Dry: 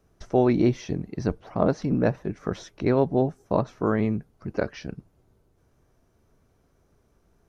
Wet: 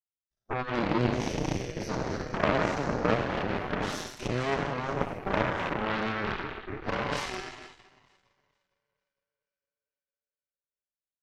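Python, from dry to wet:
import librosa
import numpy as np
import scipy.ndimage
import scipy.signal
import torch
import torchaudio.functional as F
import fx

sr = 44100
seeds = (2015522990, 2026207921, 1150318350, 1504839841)

p1 = fx.spec_trails(x, sr, decay_s=1.9)
p2 = fx.noise_reduce_blind(p1, sr, reduce_db=27)
p3 = fx.over_compress(p2, sr, threshold_db=-28.0, ratio=-0.5)
p4 = p2 + (p3 * 10.0 ** (-1.0 / 20.0))
p5 = fx.stretch_vocoder(p4, sr, factor=1.5)
p6 = p5 + fx.echo_split(p5, sr, split_hz=390.0, low_ms=263, high_ms=458, feedback_pct=52, wet_db=-14, dry=0)
y = fx.cheby_harmonics(p6, sr, harmonics=(3, 7, 8), levels_db=(-10, -40, -23), full_scale_db=-7.0)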